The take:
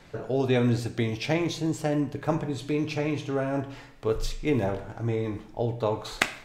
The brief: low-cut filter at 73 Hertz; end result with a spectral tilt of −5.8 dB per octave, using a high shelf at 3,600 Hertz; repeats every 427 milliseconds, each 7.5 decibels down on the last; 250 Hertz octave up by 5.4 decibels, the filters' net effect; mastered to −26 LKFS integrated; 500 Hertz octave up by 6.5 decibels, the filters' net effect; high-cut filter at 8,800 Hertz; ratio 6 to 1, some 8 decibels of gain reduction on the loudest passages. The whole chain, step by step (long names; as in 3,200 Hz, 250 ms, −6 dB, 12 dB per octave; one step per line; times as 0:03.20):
high-pass filter 73 Hz
low-pass filter 8,800 Hz
parametric band 250 Hz +4.5 dB
parametric band 500 Hz +6.5 dB
high-shelf EQ 3,600 Hz +4 dB
downward compressor 6 to 1, threshold −22 dBFS
repeating echo 427 ms, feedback 42%, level −7.5 dB
level +1.5 dB